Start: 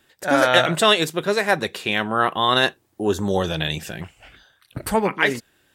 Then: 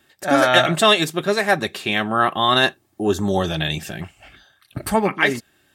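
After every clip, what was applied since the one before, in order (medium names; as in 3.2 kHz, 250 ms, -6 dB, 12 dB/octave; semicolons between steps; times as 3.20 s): comb of notches 490 Hz; trim +2.5 dB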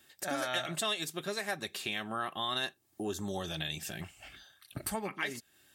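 treble shelf 3.1 kHz +10.5 dB; compression 2.5:1, threshold -29 dBFS, peak gain reduction 15 dB; trim -8.5 dB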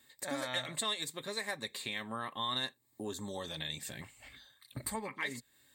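rippled EQ curve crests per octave 1, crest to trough 10 dB; trim -3.5 dB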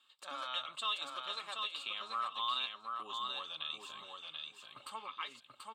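two resonant band-passes 1.9 kHz, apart 1.2 oct; feedback delay 735 ms, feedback 21%, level -4 dB; trim +8.5 dB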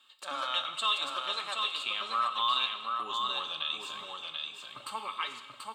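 gated-style reverb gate 450 ms falling, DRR 8 dB; trim +7 dB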